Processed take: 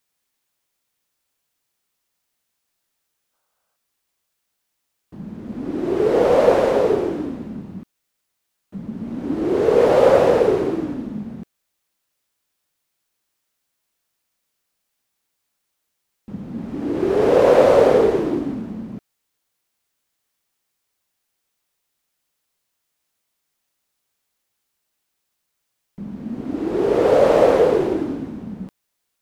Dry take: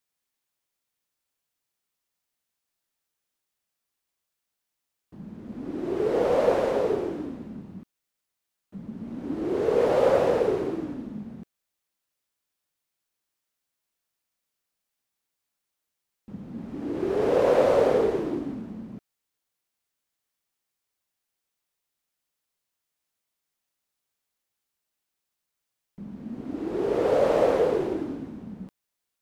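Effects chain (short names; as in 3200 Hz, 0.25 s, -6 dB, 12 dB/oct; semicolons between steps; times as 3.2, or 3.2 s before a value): spectral gain 3.33–3.76, 440–1600 Hz +10 dB; gain +7.5 dB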